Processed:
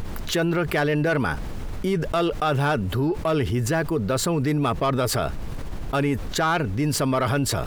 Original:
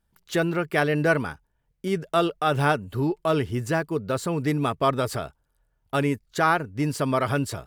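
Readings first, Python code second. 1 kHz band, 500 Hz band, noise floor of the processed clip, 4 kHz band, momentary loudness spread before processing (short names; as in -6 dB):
0.0 dB, +1.0 dB, -30 dBFS, +4.5 dB, 7 LU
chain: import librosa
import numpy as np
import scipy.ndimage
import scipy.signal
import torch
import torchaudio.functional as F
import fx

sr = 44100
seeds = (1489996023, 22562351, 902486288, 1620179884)

y = fx.spec_box(x, sr, start_s=6.54, length_s=0.21, low_hz=2100.0, high_hz=4700.0, gain_db=6)
y = fx.peak_eq(y, sr, hz=8900.0, db=-2.5, octaves=0.77)
y = fx.dmg_noise_colour(y, sr, seeds[0], colour='brown', level_db=-49.0)
y = 10.0 ** (-15.0 / 20.0) * np.tanh(y / 10.0 ** (-15.0 / 20.0))
y = fx.env_flatten(y, sr, amount_pct=70)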